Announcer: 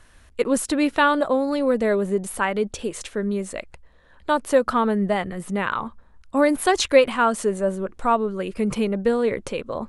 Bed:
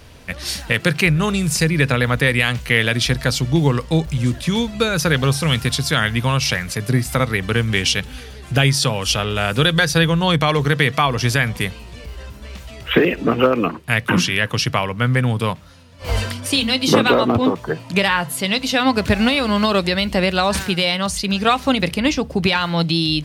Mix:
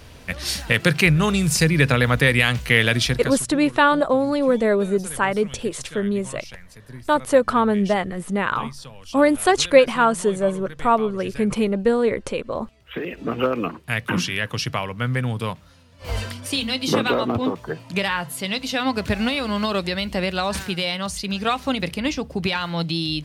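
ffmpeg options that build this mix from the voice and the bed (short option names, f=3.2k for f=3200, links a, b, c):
-filter_complex "[0:a]adelay=2800,volume=2dB[a];[1:a]volume=15.5dB,afade=t=out:st=2.94:d=0.52:silence=0.0841395,afade=t=in:st=12.85:d=0.62:silence=0.158489[b];[a][b]amix=inputs=2:normalize=0"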